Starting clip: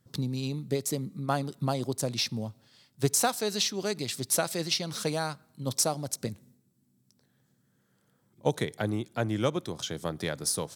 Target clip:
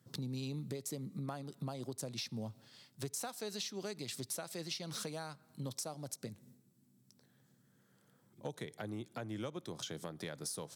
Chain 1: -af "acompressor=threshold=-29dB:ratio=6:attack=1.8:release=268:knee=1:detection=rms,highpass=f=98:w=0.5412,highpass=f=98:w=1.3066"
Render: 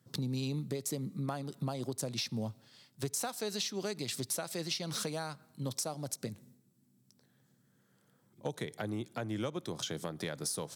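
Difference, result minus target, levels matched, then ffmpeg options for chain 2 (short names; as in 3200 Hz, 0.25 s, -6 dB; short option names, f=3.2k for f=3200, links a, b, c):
compressor: peak gain reduction -5.5 dB
-af "acompressor=threshold=-35.5dB:ratio=6:attack=1.8:release=268:knee=1:detection=rms,highpass=f=98:w=0.5412,highpass=f=98:w=1.3066"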